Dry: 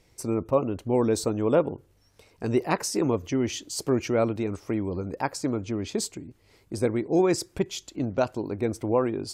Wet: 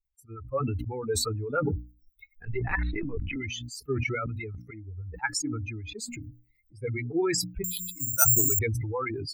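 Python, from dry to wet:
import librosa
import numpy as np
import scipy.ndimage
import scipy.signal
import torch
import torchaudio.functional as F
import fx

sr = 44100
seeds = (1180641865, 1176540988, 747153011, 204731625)

y = fx.bin_expand(x, sr, power=3.0)
y = y + 0.55 * np.pad(y, (int(2.3 * sr / 1000.0), 0))[:len(y)]
y = fx.lpc_vocoder(y, sr, seeds[0], excitation='pitch_kept', order=16, at=(2.45, 3.36))
y = fx.band_shelf(y, sr, hz=1700.0, db=15.5, octaves=1.1)
y = fx.harmonic_tremolo(y, sr, hz=9.2, depth_pct=70, crossover_hz=650.0)
y = fx.low_shelf(y, sr, hz=87.0, db=11.5)
y = fx.level_steps(y, sr, step_db=20, at=(4.14, 4.72), fade=0.02)
y = fx.hum_notches(y, sr, base_hz=60, count=5)
y = fx.resample_bad(y, sr, factor=6, down='filtered', up='zero_stuff', at=(7.64, 8.59))
y = fx.sustainer(y, sr, db_per_s=21.0)
y = y * 10.0 ** (-2.5 / 20.0)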